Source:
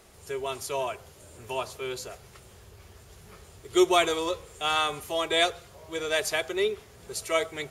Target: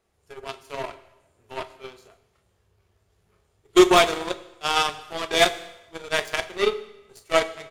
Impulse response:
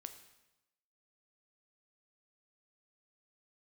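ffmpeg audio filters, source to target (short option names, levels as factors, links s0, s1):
-filter_complex "[0:a]highshelf=f=4200:g=-7,aecho=1:1:28|40:0.398|0.355,aeval=exprs='0.335*(cos(1*acos(clip(val(0)/0.335,-1,1)))-cos(1*PI/2))+0.00596*(cos(3*acos(clip(val(0)/0.335,-1,1)))-cos(3*PI/2))+0.015*(cos(4*acos(clip(val(0)/0.335,-1,1)))-cos(4*PI/2))+0.015*(cos(6*acos(clip(val(0)/0.335,-1,1)))-cos(6*PI/2))+0.0422*(cos(7*acos(clip(val(0)/0.335,-1,1)))-cos(7*PI/2))':c=same,asplit=2[s0][s1];[1:a]atrim=start_sample=2205[s2];[s1][s2]afir=irnorm=-1:irlink=0,volume=2.66[s3];[s0][s3]amix=inputs=2:normalize=0,volume=0.891"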